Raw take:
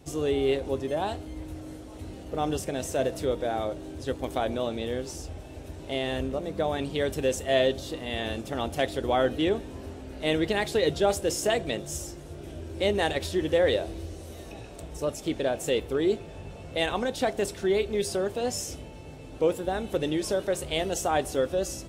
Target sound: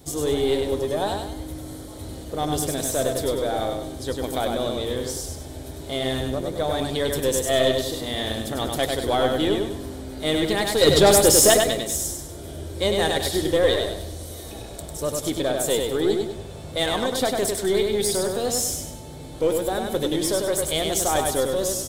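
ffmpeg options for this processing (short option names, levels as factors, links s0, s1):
-filter_complex "[0:a]bandreject=f=2700:w=6.2,asplit=2[s0][s1];[s1]aeval=exprs='clip(val(0),-1,0.0188)':c=same,volume=0.447[s2];[s0][s2]amix=inputs=2:normalize=0,aexciter=amount=2.2:drive=3.8:freq=3300,asettb=1/sr,asplit=3[s3][s4][s5];[s3]atrim=end=10.814[s6];[s4]atrim=start=10.81:end=11.54,asetpts=PTS-STARTPTS,afade=t=in:d=0.004:c=qsin,afade=t=out:st=0.726:d=0.004:c=qsin,aeval=exprs='0.355*sin(PI/2*1.58*val(0)/0.355)':c=same[s7];[s5]atrim=start=11.536[s8];[s6][s7]acrossfade=d=0.004:c1=hsin:c2=qsin[s9];[s9][s8]acrossfade=d=0.004:c1=qsin:c2=hsin,aecho=1:1:99|198|297|396|495:0.631|0.24|0.0911|0.0346|0.0132"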